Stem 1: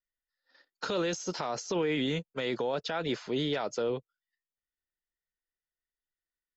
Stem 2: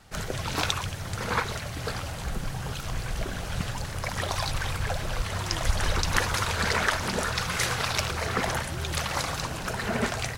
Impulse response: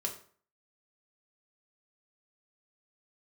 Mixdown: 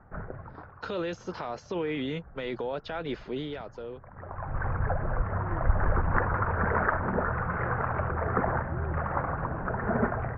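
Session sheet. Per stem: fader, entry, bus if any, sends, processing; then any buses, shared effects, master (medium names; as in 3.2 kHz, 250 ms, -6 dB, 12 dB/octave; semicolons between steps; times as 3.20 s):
3.31 s -1.5 dB -> 3.70 s -9 dB, 0.00 s, no send, none
+1.5 dB, 0.00 s, no send, steep low-pass 1.6 kHz 36 dB/octave; auto duck -20 dB, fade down 0.70 s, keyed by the first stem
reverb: none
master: low-pass 2.9 kHz 12 dB/octave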